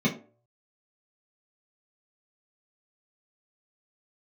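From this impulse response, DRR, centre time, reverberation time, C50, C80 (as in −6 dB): −6.0 dB, 17 ms, 0.45 s, 11.5 dB, 16.5 dB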